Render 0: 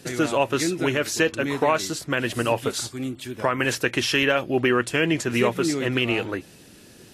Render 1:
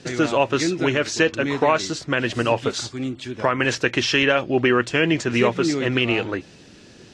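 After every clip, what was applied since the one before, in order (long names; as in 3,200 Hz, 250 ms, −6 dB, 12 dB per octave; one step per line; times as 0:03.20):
low-pass filter 6,700 Hz 24 dB per octave
level +2.5 dB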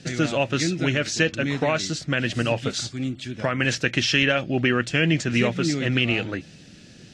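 graphic EQ with 15 bands 160 Hz +5 dB, 400 Hz −7 dB, 1,000 Hz −11 dB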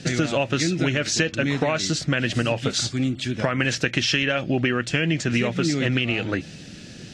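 downward compressor, threshold −25 dBFS, peak gain reduction 10 dB
level +6.5 dB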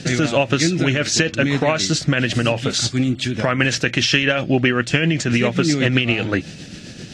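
amplitude tremolo 7.7 Hz, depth 38%
level +6.5 dB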